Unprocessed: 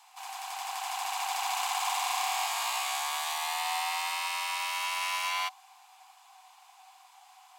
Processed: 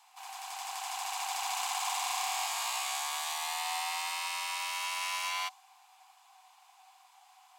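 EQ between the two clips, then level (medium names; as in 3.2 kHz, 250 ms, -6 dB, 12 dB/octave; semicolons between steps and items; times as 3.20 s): dynamic bell 7 kHz, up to +4 dB, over -46 dBFS, Q 0.72; -4.0 dB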